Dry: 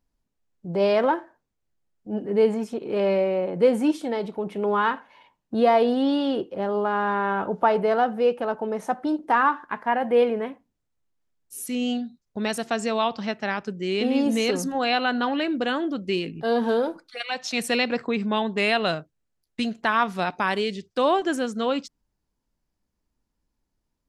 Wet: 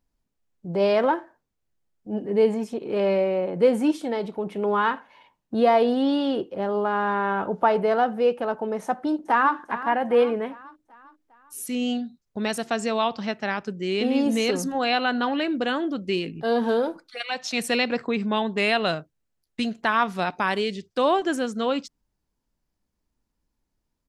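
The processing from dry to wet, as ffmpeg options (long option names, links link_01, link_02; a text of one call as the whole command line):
ffmpeg -i in.wav -filter_complex "[0:a]asettb=1/sr,asplit=3[link_01][link_02][link_03];[link_01]atrim=end=2.104[link_04];[link_02]atrim=start=2.1:end=2.83,asetpts=PTS-STARTPTS,afade=type=in:duration=0.004:curve=qsin,afade=type=out:start_time=0.726:duration=0.004:curve=qsin,equalizer=frequency=1400:width=7.6:gain=-7.5[link_05];[link_03]atrim=start=2.826[link_06];[link_04][link_05]acrossfade=duration=0.004:curve1=hsin:curve2=qsin[link_07];[link_07][link_06]acrossfade=duration=0.004:curve1=qsin:curve2=hsin,asplit=2[link_08][link_09];[link_09]afade=type=in:start_time=8.85:duration=0.01,afade=type=out:start_time=9.55:duration=0.01,aecho=0:1:400|800|1200|1600|2000:0.223872|0.111936|0.055968|0.027984|0.013992[link_10];[link_08][link_10]amix=inputs=2:normalize=0" out.wav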